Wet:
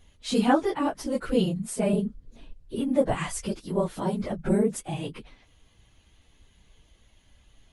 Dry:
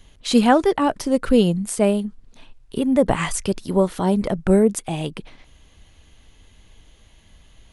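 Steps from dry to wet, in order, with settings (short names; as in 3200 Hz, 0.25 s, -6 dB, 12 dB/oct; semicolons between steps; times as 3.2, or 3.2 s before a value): phase scrambler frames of 50 ms; 1.93–2.76 resonant low shelf 660 Hz +7 dB, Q 1.5; gain -7.5 dB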